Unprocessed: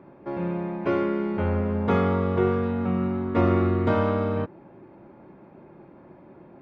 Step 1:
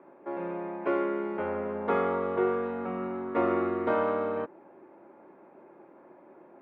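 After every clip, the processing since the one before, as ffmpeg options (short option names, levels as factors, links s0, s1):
-filter_complex "[0:a]acrossover=split=280 2600:gain=0.0708 1 0.178[s0][s1][s2];[s0][s1][s2]amix=inputs=3:normalize=0,volume=0.841"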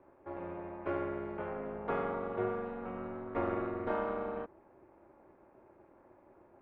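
-af "tremolo=f=260:d=0.71,volume=0.596"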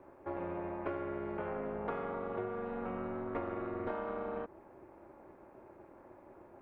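-af "acompressor=threshold=0.0112:ratio=10,volume=1.78"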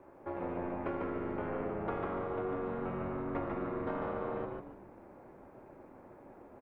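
-filter_complex "[0:a]asplit=5[s0][s1][s2][s3][s4];[s1]adelay=147,afreqshift=-90,volume=0.708[s5];[s2]adelay=294,afreqshift=-180,volume=0.24[s6];[s3]adelay=441,afreqshift=-270,volume=0.0822[s7];[s4]adelay=588,afreqshift=-360,volume=0.0279[s8];[s0][s5][s6][s7][s8]amix=inputs=5:normalize=0"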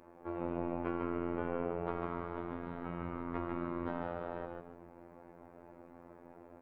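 -af "afftfilt=real='hypot(re,im)*cos(PI*b)':imag='0':win_size=2048:overlap=0.75,volume=1.26"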